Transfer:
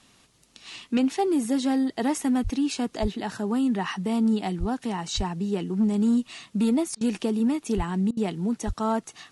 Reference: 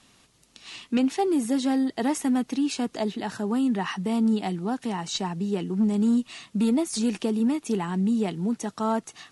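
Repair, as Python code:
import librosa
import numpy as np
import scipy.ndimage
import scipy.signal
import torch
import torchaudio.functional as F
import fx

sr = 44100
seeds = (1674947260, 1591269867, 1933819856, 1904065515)

y = fx.fix_deplosive(x, sr, at_s=(2.43, 3.01, 4.59, 5.16, 7.76, 8.66))
y = fx.fix_interpolate(y, sr, at_s=(6.95, 8.11), length_ms=59.0)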